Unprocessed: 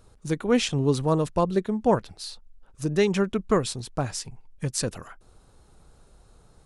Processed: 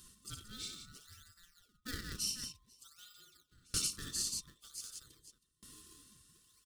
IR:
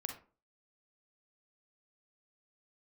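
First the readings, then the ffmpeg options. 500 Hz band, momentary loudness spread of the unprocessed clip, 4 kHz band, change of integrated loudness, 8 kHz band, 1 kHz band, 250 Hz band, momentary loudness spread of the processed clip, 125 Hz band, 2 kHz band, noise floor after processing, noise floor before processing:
-38.0 dB, 13 LU, -6.5 dB, -14.0 dB, -3.5 dB, -29.0 dB, -28.5 dB, 22 LU, -24.5 dB, -16.0 dB, -77 dBFS, -57 dBFS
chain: -filter_complex "[0:a]afftfilt=real='real(if(lt(b,960),b+48*(1-2*mod(floor(b/48),2)),b),0)':imag='imag(if(lt(b,960),b+48*(1-2*mod(floor(b/48),2)),b),0)':win_size=2048:overlap=0.75,aeval=exprs='0.422*(cos(1*acos(clip(val(0)/0.422,-1,1)))-cos(1*PI/2))+0.0473*(cos(3*acos(clip(val(0)/0.422,-1,1)))-cos(3*PI/2))':c=same,equalizer=f=8.8k:w=2.2:g=2.5,aecho=1:1:2.2:0.49,aecho=1:1:60|93|176|495:0.531|0.316|0.531|0.15,areverse,acompressor=threshold=-37dB:ratio=8,areverse,bandreject=f=146:t=h:w=4,bandreject=f=292:t=h:w=4,bandreject=f=438:t=h:w=4,asplit=2[a][b];[b]acrusher=samples=34:mix=1:aa=0.000001:lfo=1:lforange=54.4:lforate=0.55,volume=-8.5dB[c];[a][c]amix=inputs=2:normalize=0,firequalizer=gain_entry='entry(220,0);entry(710,-22);entry(1100,-20);entry(3400,8)':delay=0.05:min_phase=1,aeval=exprs='val(0)+0.000178*(sin(2*PI*50*n/s)+sin(2*PI*2*50*n/s)/2+sin(2*PI*3*50*n/s)/3+sin(2*PI*4*50*n/s)/4+sin(2*PI*5*50*n/s)/5)':c=same,acontrast=67,aeval=exprs='val(0)*pow(10,-30*if(lt(mod(0.53*n/s,1),2*abs(0.53)/1000),1-mod(0.53*n/s,1)/(2*abs(0.53)/1000),(mod(0.53*n/s,1)-2*abs(0.53)/1000)/(1-2*abs(0.53)/1000))/20)':c=same,volume=-2dB"

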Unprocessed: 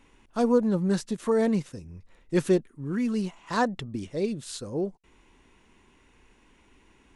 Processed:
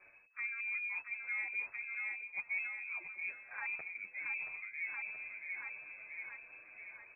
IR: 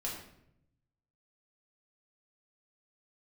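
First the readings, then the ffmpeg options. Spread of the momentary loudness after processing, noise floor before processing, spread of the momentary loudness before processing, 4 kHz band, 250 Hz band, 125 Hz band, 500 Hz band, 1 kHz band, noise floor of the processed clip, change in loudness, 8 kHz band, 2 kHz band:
10 LU, -61 dBFS, 12 LU, under -40 dB, under -40 dB, under -40 dB, -39.5 dB, -20.5 dB, -61 dBFS, -12.5 dB, under -35 dB, +4.5 dB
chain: -filter_complex "[0:a]aeval=exprs='if(lt(val(0),0),0.708*val(0),val(0))':c=same,aecho=1:1:677|1354|2031|2708|3385:0.224|0.116|0.0605|0.0315|0.0164,lowpass=f=2.2k:t=q:w=0.5098,lowpass=f=2.2k:t=q:w=0.6013,lowpass=f=2.2k:t=q:w=0.9,lowpass=f=2.2k:t=q:w=2.563,afreqshift=-2600,bandreject=f=238.5:t=h:w=4,bandreject=f=477:t=h:w=4,bandreject=f=715.5:t=h:w=4,bandreject=f=954:t=h:w=4,bandreject=f=1.1925k:t=h:w=4,bandreject=f=1.431k:t=h:w=4,areverse,acompressor=threshold=-42dB:ratio=5,areverse,asplit=2[a][b];[b]adelay=8.7,afreqshift=1.3[c];[a][c]amix=inputs=2:normalize=1,volume=4.5dB"

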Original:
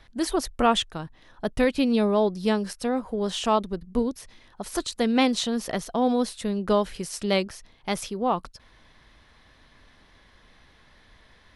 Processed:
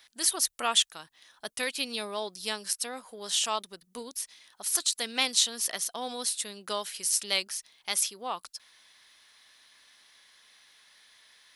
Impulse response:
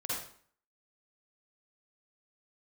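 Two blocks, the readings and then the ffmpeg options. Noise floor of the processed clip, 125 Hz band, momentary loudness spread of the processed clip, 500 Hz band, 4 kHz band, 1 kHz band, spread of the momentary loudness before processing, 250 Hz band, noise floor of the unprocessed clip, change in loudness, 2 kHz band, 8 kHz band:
-69 dBFS, under -20 dB, 15 LU, -13.5 dB, +3.5 dB, -8.5 dB, 11 LU, -20.0 dB, -57 dBFS, -3.5 dB, -1.5 dB, +9.5 dB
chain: -af "aderivative,volume=9dB"

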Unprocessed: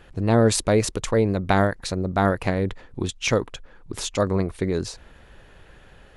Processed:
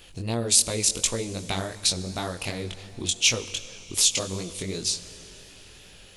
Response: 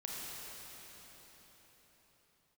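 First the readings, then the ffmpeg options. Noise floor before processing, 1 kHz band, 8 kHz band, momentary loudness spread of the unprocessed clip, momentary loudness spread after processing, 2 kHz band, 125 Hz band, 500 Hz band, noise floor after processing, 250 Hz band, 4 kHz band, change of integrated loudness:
-51 dBFS, -11.0 dB, +9.0 dB, 12 LU, 13 LU, -4.0 dB, -9.5 dB, -11.0 dB, -49 dBFS, -10.5 dB, +7.5 dB, -2.0 dB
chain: -filter_complex "[0:a]acompressor=threshold=-28dB:ratio=2,asplit=2[a][b];[1:a]atrim=start_sample=2205,asetrate=52920,aresample=44100[c];[b][c]afir=irnorm=-1:irlink=0,volume=-11.5dB[d];[a][d]amix=inputs=2:normalize=0,flanger=delay=17:depth=5.9:speed=2.7,aexciter=amount=6.8:drive=3:freq=2.4k,volume=-2.5dB"

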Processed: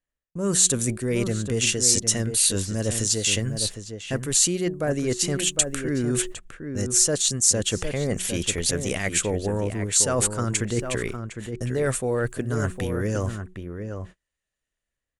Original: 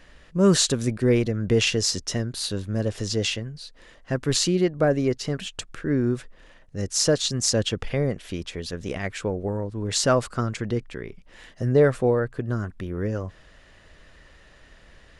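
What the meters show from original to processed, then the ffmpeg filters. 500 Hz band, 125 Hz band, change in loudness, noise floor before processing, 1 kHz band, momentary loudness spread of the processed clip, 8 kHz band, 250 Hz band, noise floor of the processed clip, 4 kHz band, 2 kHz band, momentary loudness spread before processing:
-3.0 dB, -1.0 dB, +1.5 dB, -53 dBFS, -2.0 dB, 13 LU, +8.5 dB, -2.0 dB, under -85 dBFS, +0.5 dB, +1.0 dB, 13 LU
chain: -filter_complex "[0:a]bandreject=f=5.1k:w=22,bandreject=f=183.5:t=h:w=4,bandreject=f=367:t=h:w=4,acrossover=split=2200[a][b];[b]dynaudnorm=f=240:g=5:m=9dB[c];[a][c]amix=inputs=2:normalize=0,agate=range=-45dB:threshold=-39dB:ratio=16:detection=peak,areverse,acompressor=threshold=-30dB:ratio=6,areverse,highshelf=f=6.2k:t=q:w=1.5:g=9,asplit=2[d][e];[e]adelay=758,volume=-7dB,highshelf=f=4k:g=-17.1[f];[d][f]amix=inputs=2:normalize=0,volume=7.5dB"

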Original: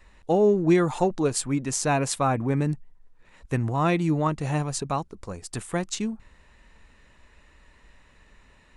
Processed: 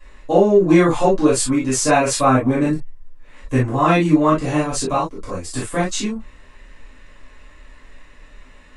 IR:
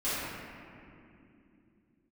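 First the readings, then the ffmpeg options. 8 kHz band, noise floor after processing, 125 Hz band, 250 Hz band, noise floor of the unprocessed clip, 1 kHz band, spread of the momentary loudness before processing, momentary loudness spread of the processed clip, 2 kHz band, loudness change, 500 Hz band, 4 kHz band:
+7.5 dB, -45 dBFS, +4.5 dB, +8.5 dB, -57 dBFS, +8.5 dB, 13 LU, 13 LU, +9.0 dB, +7.5 dB, +8.0 dB, +8.0 dB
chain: -filter_complex "[1:a]atrim=start_sample=2205,atrim=end_sample=3087[a];[0:a][a]afir=irnorm=-1:irlink=0,volume=4dB"

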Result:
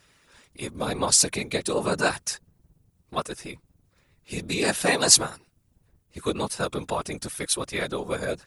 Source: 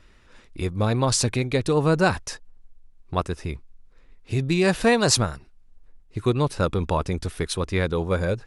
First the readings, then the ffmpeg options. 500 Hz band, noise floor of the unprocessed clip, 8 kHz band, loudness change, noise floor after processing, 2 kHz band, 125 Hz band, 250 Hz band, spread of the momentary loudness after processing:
-4.5 dB, -54 dBFS, +6.5 dB, -1.0 dB, -68 dBFS, -1.0 dB, -12.5 dB, -6.5 dB, 18 LU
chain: -af "afftfilt=real='hypot(re,im)*cos(2*PI*random(0))':imag='hypot(re,im)*sin(2*PI*random(1))':win_size=512:overlap=0.75,aemphasis=mode=production:type=bsi,volume=3.5dB"

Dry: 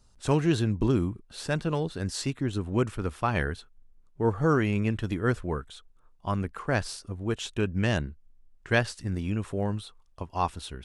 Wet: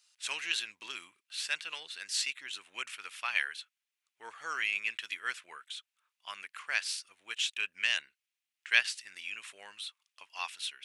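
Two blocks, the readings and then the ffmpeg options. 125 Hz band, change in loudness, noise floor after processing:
under -40 dB, -5.5 dB, under -85 dBFS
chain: -af "highpass=f=2.4k:t=q:w=2.1,volume=1dB"

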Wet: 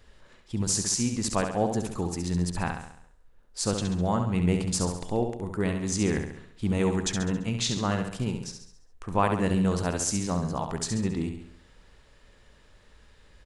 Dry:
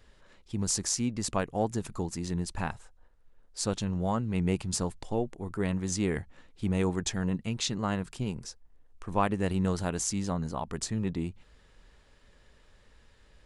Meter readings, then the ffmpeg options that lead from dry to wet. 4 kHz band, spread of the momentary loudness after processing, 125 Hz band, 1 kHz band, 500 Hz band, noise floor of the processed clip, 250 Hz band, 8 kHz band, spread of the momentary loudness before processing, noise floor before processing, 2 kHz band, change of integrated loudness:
+3.5 dB, 8 LU, +3.5 dB, +3.5 dB, +3.5 dB, -57 dBFS, +3.5 dB, +3.5 dB, 8 LU, -60 dBFS, +3.5 dB, +3.5 dB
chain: -af "aecho=1:1:68|136|204|272|340|408:0.473|0.237|0.118|0.0591|0.0296|0.0148,volume=2.5dB"

